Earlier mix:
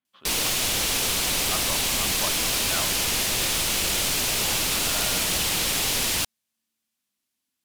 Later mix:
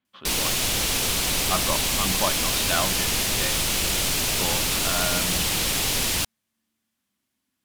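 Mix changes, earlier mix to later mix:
speech +7.5 dB
master: add low-shelf EQ 220 Hz +5 dB

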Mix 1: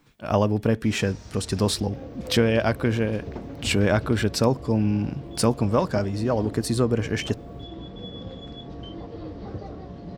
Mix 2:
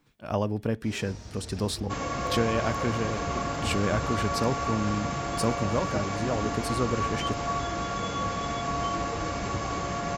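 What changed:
speech −6.5 dB
second sound: remove transistor ladder low-pass 560 Hz, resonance 25%

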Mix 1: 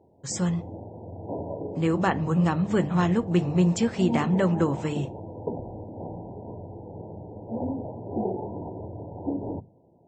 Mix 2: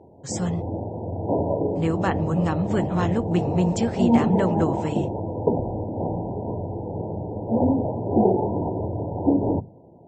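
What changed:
speech: send −7.0 dB
background +10.0 dB

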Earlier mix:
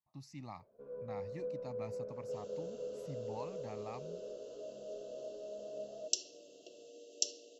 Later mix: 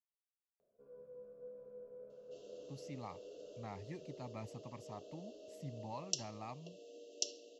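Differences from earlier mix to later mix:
speech: entry +2.55 s
first sound −10.5 dB
second sound: add high-frequency loss of the air 71 metres

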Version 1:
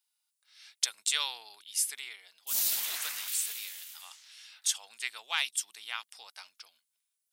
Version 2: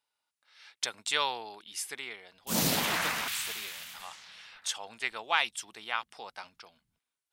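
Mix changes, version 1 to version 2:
speech −7.0 dB
master: remove first difference

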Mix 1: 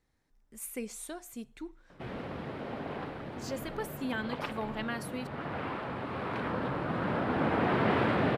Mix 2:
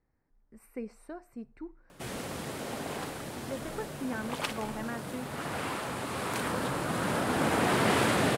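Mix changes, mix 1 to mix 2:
speech: add moving average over 13 samples
background: remove high-frequency loss of the air 380 metres

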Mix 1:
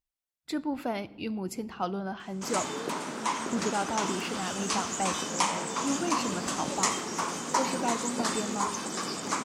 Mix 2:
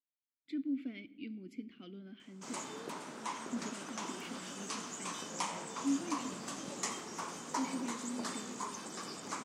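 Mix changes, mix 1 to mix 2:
speech: add formant filter i
background −10.5 dB

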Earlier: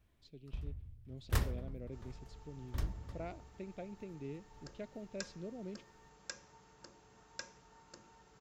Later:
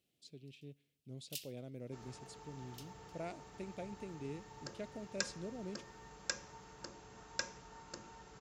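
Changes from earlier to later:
speech: remove high-frequency loss of the air 160 metres
first sound: add Chebyshev high-pass filter 2,700 Hz, order 5
second sound +7.0 dB

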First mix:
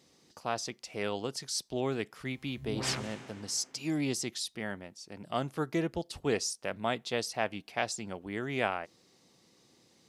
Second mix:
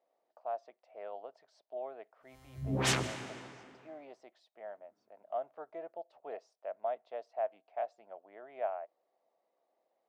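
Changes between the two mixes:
speech: add four-pole ladder band-pass 690 Hz, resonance 75%
background +5.5 dB

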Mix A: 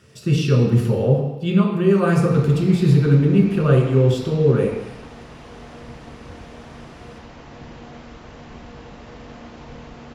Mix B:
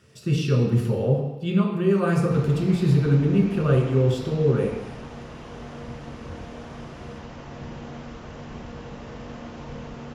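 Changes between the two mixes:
speech −4.5 dB
background: send +7.5 dB

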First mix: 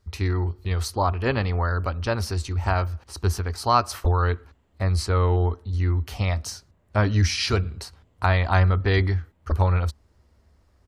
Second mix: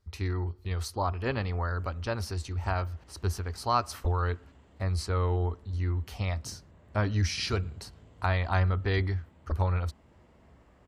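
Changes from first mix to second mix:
speech −7.0 dB
background +8.0 dB

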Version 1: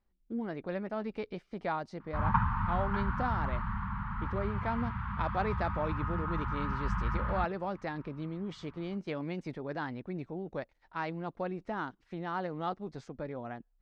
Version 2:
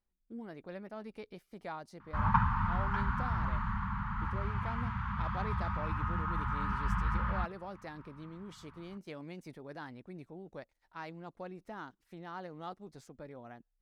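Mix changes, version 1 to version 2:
speech −9.0 dB
master: remove high-frequency loss of the air 140 metres

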